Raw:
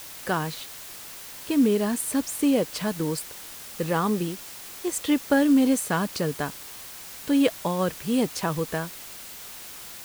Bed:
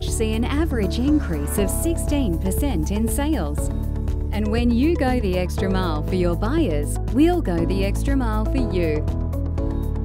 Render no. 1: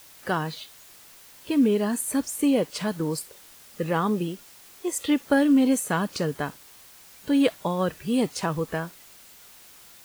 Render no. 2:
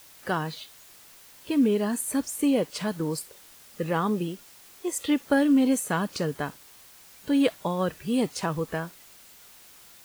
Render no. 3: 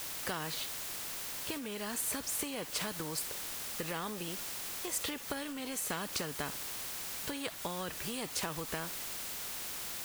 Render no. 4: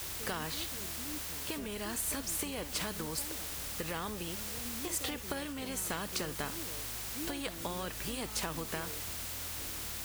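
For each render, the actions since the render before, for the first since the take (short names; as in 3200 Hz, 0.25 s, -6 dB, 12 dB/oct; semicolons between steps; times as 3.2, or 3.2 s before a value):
noise print and reduce 9 dB
gain -1.5 dB
compressor, threshold -30 dBFS, peak gain reduction 12 dB; spectral compressor 2:1
add bed -27 dB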